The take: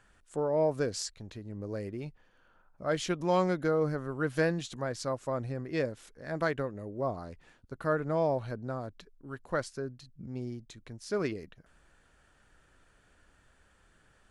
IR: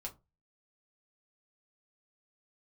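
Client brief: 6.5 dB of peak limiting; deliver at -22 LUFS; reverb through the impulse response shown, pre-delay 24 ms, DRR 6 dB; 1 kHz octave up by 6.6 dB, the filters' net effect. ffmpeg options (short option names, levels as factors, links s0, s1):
-filter_complex "[0:a]equalizer=f=1000:t=o:g=8.5,alimiter=limit=0.119:level=0:latency=1,asplit=2[s0][s1];[1:a]atrim=start_sample=2205,adelay=24[s2];[s1][s2]afir=irnorm=-1:irlink=0,volume=0.668[s3];[s0][s3]amix=inputs=2:normalize=0,volume=2.99"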